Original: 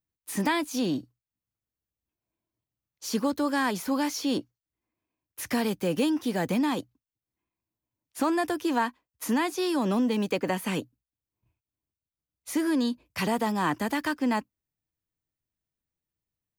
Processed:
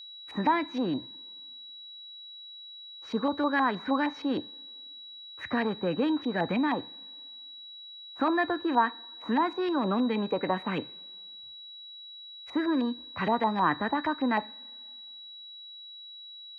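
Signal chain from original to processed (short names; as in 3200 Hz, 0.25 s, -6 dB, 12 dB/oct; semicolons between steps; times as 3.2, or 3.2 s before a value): LFO low-pass saw up 6.4 Hz 820–2300 Hz; whine 3900 Hz -41 dBFS; two-slope reverb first 0.4 s, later 2 s, from -18 dB, DRR 15.5 dB; gain -2.5 dB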